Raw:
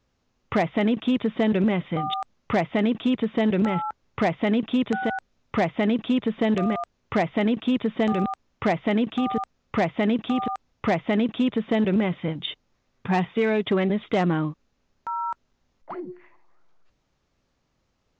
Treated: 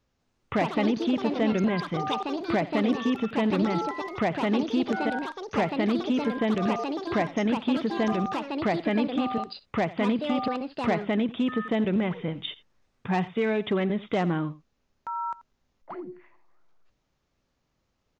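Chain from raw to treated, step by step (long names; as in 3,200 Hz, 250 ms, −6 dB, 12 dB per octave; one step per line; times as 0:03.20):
single-tap delay 86 ms −18.5 dB
delay with pitch and tempo change per echo 197 ms, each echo +5 semitones, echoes 2, each echo −6 dB
level −3.5 dB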